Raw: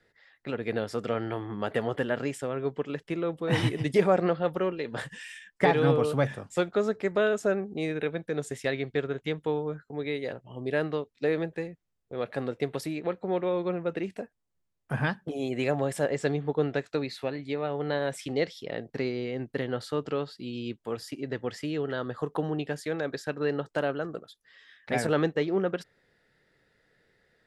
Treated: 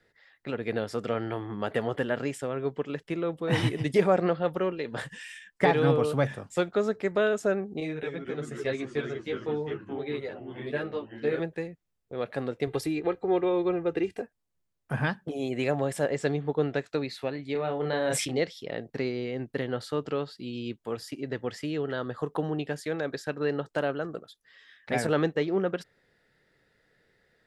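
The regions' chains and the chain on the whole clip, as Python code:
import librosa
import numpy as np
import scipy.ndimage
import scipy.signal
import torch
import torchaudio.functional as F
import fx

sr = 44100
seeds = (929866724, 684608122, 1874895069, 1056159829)

y = fx.chain(x, sr, fx.high_shelf(hz=10000.0, db=-11.5),
    fx.echo_pitch(ms=224, semitones=-2, count=3, db_per_echo=-6.0),
    fx.ensemble(), at=(7.8, 11.4))
y = fx.chain(y, sr, fx.low_shelf(hz=230.0, db=6.0),
    fx.comb(ms=2.5, depth=0.63), at=(12.67, 14.22))
y = fx.chain(y, sr, fx.doubler(ms=32.0, db=-6.0),
    fx.sustainer(db_per_s=35.0), at=(17.52, 18.39))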